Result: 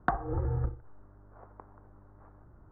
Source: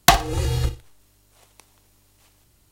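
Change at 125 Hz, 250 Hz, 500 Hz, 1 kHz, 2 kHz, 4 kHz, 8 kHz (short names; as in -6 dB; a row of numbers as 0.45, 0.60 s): -8.0 dB, -9.0 dB, -11.5 dB, -13.0 dB, -15.0 dB, under -40 dB, under -40 dB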